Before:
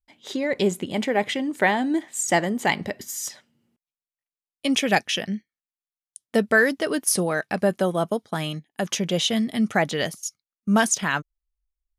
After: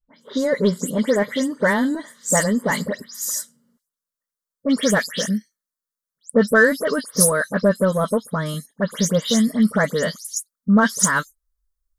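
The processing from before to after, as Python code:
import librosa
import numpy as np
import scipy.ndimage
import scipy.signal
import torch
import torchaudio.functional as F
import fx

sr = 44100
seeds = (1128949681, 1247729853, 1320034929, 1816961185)

p1 = fx.spec_delay(x, sr, highs='late', ms=133)
p2 = 10.0 ** (-22.0 / 20.0) * np.tanh(p1 / 10.0 ** (-22.0 / 20.0))
p3 = p1 + (p2 * librosa.db_to_amplitude(-7.5))
p4 = fx.fixed_phaser(p3, sr, hz=510.0, stages=8)
y = p4 * librosa.db_to_amplitude(5.0)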